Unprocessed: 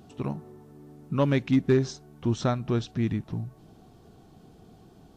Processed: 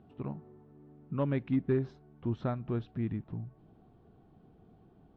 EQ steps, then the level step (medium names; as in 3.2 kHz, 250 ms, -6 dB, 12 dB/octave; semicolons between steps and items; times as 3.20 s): distance through air 470 m; -6.5 dB